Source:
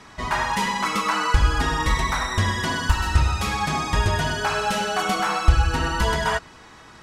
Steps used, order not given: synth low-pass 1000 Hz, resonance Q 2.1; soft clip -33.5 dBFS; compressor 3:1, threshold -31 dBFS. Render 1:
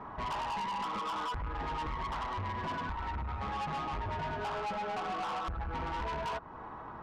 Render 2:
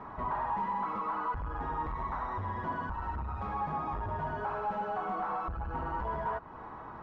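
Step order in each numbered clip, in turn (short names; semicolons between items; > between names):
compressor > synth low-pass > soft clip; compressor > soft clip > synth low-pass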